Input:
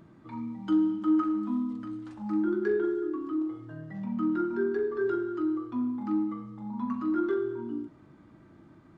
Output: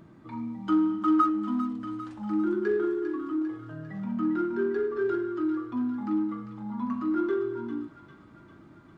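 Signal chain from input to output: 0.69–1.3 bell 1200 Hz +11.5 dB 0.6 oct; in parallel at -11.5 dB: soft clip -34.5 dBFS, distortion -6 dB; on the sum: thin delay 0.399 s, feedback 62%, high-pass 1700 Hz, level -7.5 dB

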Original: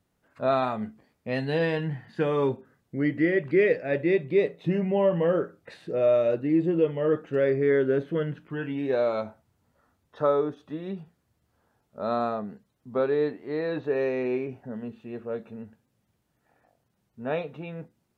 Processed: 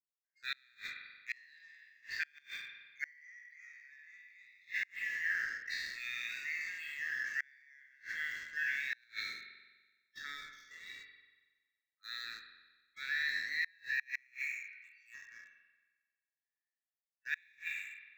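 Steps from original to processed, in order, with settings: spectral trails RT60 1.09 s; steep high-pass 1700 Hz 72 dB/oct; spectral noise reduction 24 dB; sample leveller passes 2; transient shaper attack -1 dB, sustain +6 dB; fixed phaser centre 3000 Hz, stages 6; spring tank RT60 1.3 s, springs 42 ms, chirp 20 ms, DRR 6 dB; flipped gate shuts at -25 dBFS, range -32 dB; gain +1 dB

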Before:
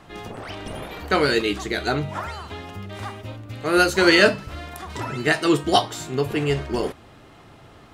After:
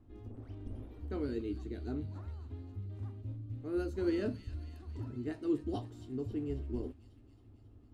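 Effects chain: EQ curve 110 Hz 0 dB, 160 Hz -22 dB, 250 Hz -2 dB, 600 Hz -21 dB, 1900 Hz -29 dB; thin delay 0.271 s, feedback 61%, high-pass 2900 Hz, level -8.5 dB; gain -4.5 dB

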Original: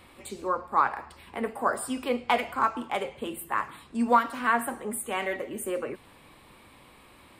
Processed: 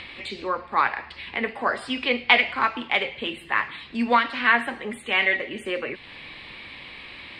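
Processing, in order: band shelf 2900 Hz +14 dB; in parallel at -2 dB: upward compressor, threshold -28 dBFS; on the sum: air absorption 110 m; gain -3.5 dB

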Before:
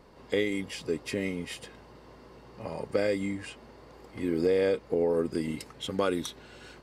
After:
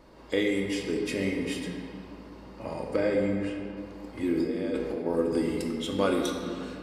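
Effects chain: 2.96–3.77 high shelf 3600 Hz -11.5 dB; 4.33–5.06 negative-ratio compressor -33 dBFS, ratio -1; reverb RT60 2.3 s, pre-delay 3 ms, DRR 0.5 dB

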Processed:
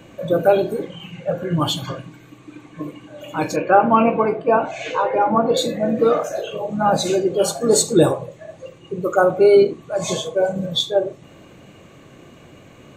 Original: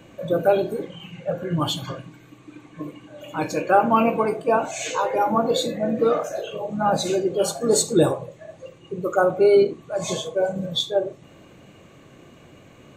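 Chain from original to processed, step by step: 3.56–5.57 LPF 2800 Hz 12 dB/oct; gain +3.5 dB

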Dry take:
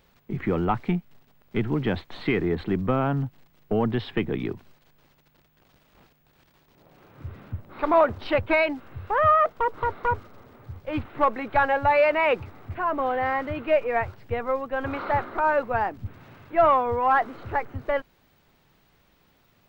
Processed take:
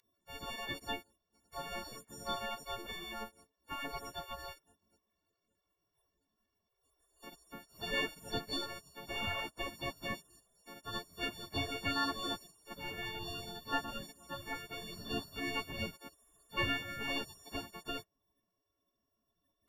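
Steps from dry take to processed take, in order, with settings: frequency quantiser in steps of 4 st; spectral gate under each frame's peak -20 dB weak; gain +2.5 dB

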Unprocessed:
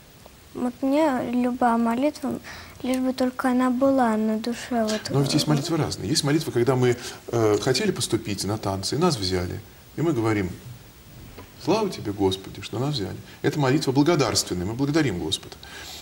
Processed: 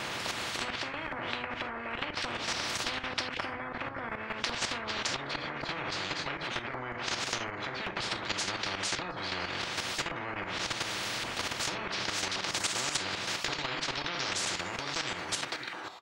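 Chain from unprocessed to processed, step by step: ending faded out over 4.48 s; 12.09–13.01 tilt +3 dB/oct; treble ducked by the level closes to 460 Hz, closed at -17 dBFS; outdoor echo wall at 95 m, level -25 dB; non-linear reverb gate 0.1 s falling, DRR 1 dB; limiter -16.5 dBFS, peak gain reduction 8.5 dB; dynamic EQ 750 Hz, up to -3 dB, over -38 dBFS, Q 1.4; LFO band-pass saw up 0.89 Hz 940–1900 Hz; level quantiser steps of 11 dB; spectral compressor 10:1; gain +8.5 dB

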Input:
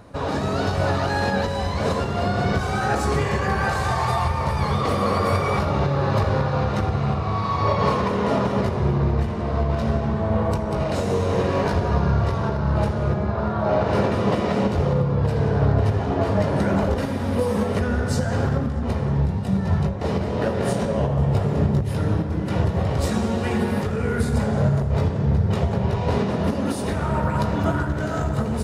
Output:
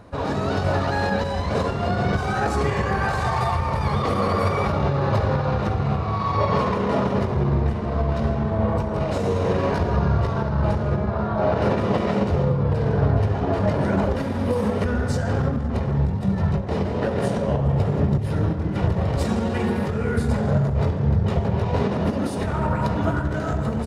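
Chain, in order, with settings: high shelf 5400 Hz -6 dB; tempo 1.2×

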